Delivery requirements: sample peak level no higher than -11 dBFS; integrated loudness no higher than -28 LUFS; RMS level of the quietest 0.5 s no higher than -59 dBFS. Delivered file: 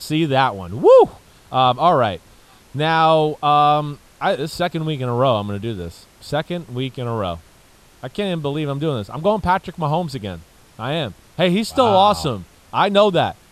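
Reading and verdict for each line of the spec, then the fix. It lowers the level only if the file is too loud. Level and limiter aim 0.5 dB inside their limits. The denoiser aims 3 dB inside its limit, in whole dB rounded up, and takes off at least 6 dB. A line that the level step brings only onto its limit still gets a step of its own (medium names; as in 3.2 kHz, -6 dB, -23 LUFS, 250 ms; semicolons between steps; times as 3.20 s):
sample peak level -3.0 dBFS: fail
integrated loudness -18.5 LUFS: fail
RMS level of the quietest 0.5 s -50 dBFS: fail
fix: trim -10 dB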